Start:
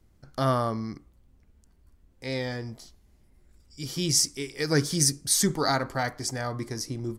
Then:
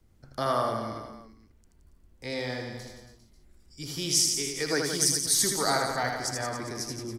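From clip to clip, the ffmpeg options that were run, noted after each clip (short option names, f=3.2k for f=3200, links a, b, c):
-filter_complex "[0:a]acrossover=split=340|570|3100[a][b][c][d];[a]acompressor=threshold=-38dB:ratio=6[e];[e][b][c][d]amix=inputs=4:normalize=0,aecho=1:1:80|172|277.8|399.5|539.4:0.631|0.398|0.251|0.158|0.1,volume=-1.5dB"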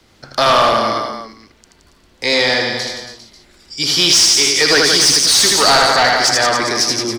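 -filter_complex "[0:a]asplit=2[a][b];[b]highpass=f=720:p=1,volume=24dB,asoftclip=type=tanh:threshold=-9dB[c];[a][c]amix=inputs=2:normalize=0,lowpass=f=3.1k:p=1,volume=-6dB,equalizer=f=4.2k:w=0.95:g=9,volume=5dB"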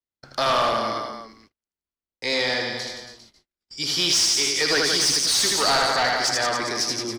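-af "agate=range=-39dB:threshold=-42dB:ratio=16:detection=peak,volume=-9dB"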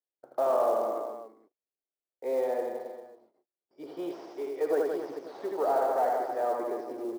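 -af "asuperpass=centerf=520:order=4:qfactor=1.2,acrusher=bits=7:mode=log:mix=0:aa=0.000001"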